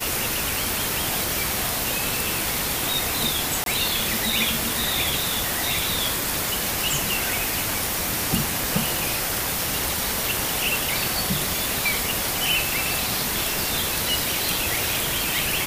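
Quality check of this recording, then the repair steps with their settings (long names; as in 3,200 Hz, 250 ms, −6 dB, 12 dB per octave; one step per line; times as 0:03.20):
0:03.64–0:03.66: drop-out 22 ms
0:08.97: click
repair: click removal
repair the gap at 0:03.64, 22 ms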